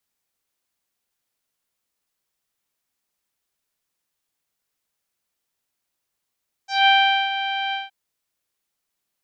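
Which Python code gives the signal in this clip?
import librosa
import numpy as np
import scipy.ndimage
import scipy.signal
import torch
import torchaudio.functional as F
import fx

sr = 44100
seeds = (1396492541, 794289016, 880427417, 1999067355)

y = fx.sub_voice(sr, note=79, wave='saw', cutoff_hz=3200.0, q=2.7, env_oct=1.0, env_s=0.14, attack_ms=182.0, decay_s=0.43, sustain_db=-11.0, release_s=0.17, note_s=1.05, slope=24)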